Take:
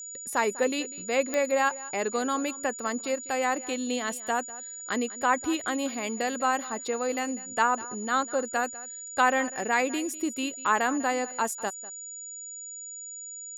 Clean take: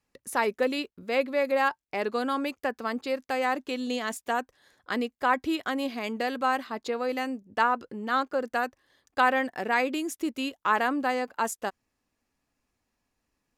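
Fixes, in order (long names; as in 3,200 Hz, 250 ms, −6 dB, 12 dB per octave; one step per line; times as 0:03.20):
click removal
notch filter 6,900 Hz, Q 30
echo removal 197 ms −18.5 dB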